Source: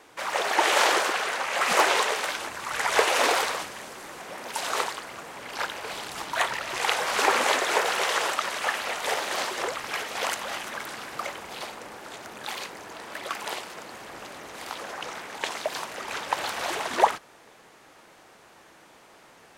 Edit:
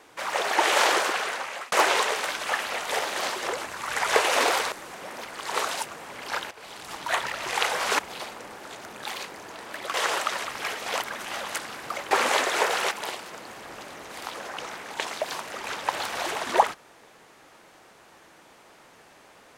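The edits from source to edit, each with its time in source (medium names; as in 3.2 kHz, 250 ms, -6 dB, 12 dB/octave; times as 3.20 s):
1.08–1.72 s: fade out equal-power
3.55–3.99 s: delete
4.52–5.13 s: reverse
5.78–6.67 s: fade in equal-power, from -14.5 dB
7.26–8.06 s: swap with 11.40–13.35 s
8.56–9.73 s: move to 2.41 s
10.31–10.87 s: reverse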